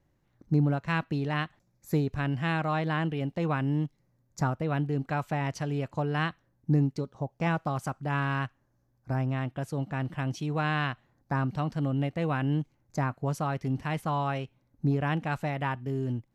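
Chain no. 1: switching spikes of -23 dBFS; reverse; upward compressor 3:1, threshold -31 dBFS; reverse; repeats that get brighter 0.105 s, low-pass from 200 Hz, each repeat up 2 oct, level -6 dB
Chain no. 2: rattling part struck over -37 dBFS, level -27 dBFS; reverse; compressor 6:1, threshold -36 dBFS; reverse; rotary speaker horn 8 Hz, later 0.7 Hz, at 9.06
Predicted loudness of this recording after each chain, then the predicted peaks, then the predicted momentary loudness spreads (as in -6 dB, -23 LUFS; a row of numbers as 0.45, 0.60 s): -28.5, -42.0 LUFS; -13.5, -24.5 dBFS; 4, 4 LU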